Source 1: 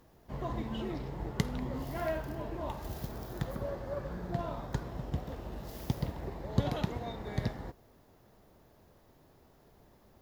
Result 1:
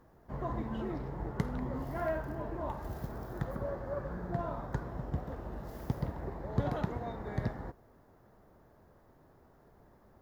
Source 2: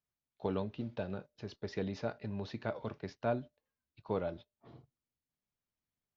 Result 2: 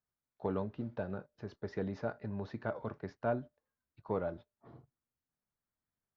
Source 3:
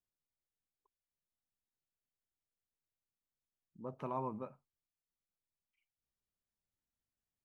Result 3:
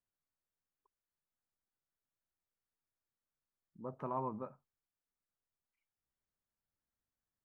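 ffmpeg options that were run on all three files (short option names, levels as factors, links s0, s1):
-af "highshelf=f=2100:t=q:w=1.5:g=-8,asoftclip=type=tanh:threshold=0.119"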